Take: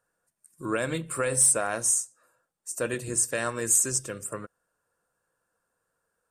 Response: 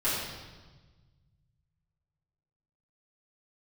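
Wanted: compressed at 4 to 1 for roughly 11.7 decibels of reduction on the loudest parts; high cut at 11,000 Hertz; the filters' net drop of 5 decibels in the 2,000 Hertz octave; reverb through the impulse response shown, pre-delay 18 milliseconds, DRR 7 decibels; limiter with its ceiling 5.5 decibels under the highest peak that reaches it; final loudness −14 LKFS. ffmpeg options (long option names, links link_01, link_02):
-filter_complex "[0:a]lowpass=11000,equalizer=frequency=2000:width_type=o:gain=-7,acompressor=threshold=-32dB:ratio=4,alimiter=level_in=2dB:limit=-24dB:level=0:latency=1,volume=-2dB,asplit=2[link_01][link_02];[1:a]atrim=start_sample=2205,adelay=18[link_03];[link_02][link_03]afir=irnorm=-1:irlink=0,volume=-17.5dB[link_04];[link_01][link_04]amix=inputs=2:normalize=0,volume=22dB"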